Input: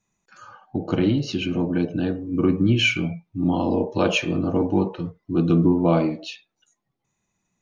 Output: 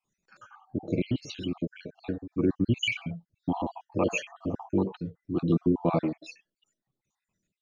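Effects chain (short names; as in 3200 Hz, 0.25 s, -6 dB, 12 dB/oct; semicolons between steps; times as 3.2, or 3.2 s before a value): random spectral dropouts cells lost 54%; gain -4.5 dB; MP3 80 kbps 22050 Hz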